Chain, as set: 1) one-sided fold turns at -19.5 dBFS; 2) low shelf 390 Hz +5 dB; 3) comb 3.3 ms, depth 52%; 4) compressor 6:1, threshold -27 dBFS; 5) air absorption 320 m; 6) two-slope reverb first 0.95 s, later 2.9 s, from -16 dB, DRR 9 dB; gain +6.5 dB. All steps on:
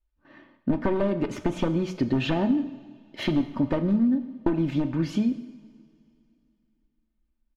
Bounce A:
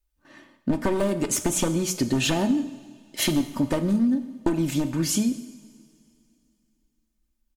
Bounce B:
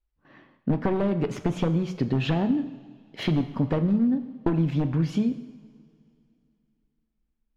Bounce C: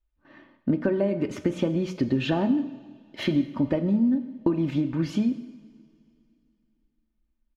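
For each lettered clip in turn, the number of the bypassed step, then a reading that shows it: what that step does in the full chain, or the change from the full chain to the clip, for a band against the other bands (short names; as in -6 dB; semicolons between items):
5, 4 kHz band +7.0 dB; 3, 125 Hz band +5.5 dB; 1, distortion -9 dB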